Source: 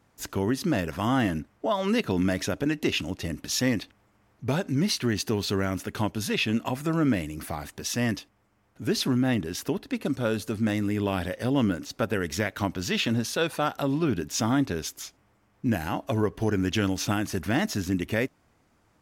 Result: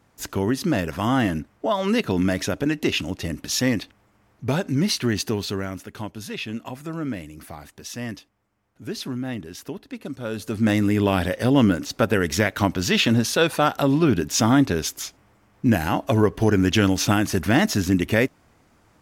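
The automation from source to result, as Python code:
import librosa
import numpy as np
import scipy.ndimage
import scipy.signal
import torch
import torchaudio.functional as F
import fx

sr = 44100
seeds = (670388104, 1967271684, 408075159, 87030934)

y = fx.gain(x, sr, db=fx.line((5.21, 3.5), (5.89, -5.0), (10.2, -5.0), (10.7, 7.0)))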